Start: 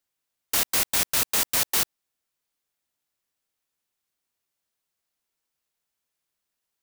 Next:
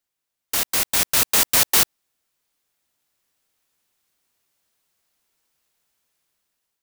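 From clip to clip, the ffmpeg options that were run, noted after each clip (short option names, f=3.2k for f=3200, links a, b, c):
-af "dynaudnorm=f=420:g=5:m=10dB"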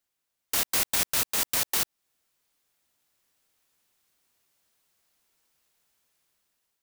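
-af "alimiter=limit=-14dB:level=0:latency=1:release=310"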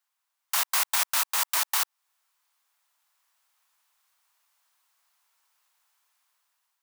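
-af "highpass=f=990:t=q:w=2.3"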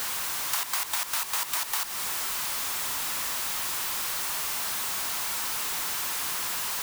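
-af "aeval=exprs='val(0)+0.5*0.0501*sgn(val(0))':c=same,acompressor=threshold=-27dB:ratio=12,volume=1.5dB"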